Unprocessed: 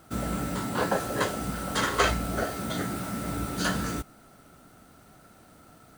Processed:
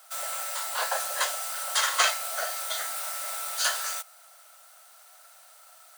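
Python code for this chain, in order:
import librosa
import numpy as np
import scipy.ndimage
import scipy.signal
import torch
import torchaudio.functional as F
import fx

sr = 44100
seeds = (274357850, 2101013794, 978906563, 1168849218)

y = scipy.signal.sosfilt(scipy.signal.butter(8, 580.0, 'highpass', fs=sr, output='sos'), x)
y = fx.high_shelf(y, sr, hz=2600.0, db=12.0)
y = y * librosa.db_to_amplitude(-2.5)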